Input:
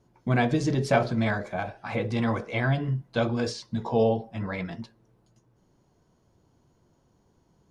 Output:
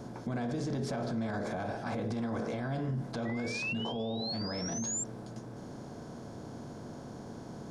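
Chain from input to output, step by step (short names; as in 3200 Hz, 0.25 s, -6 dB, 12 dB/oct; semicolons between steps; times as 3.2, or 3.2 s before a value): per-bin compression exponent 0.6; bell 2400 Hz -9.5 dB 0.74 oct; small resonant body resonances 230/2500 Hz, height 6 dB; painted sound rise, 3.25–5.04, 1900–7500 Hz -33 dBFS; limiter -27.5 dBFS, peak gain reduction 20 dB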